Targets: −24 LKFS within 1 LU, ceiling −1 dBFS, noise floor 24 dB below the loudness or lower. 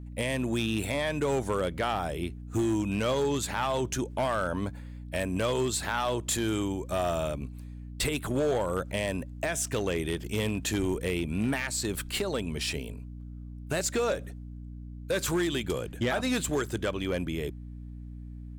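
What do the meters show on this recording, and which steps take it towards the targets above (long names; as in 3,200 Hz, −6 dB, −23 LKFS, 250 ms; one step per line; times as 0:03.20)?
share of clipped samples 1.6%; peaks flattened at −22.0 dBFS; mains hum 60 Hz; hum harmonics up to 300 Hz; level of the hum −39 dBFS; integrated loudness −30.0 LKFS; sample peak −22.0 dBFS; target loudness −24.0 LKFS
→ clipped peaks rebuilt −22 dBFS
hum removal 60 Hz, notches 5
level +6 dB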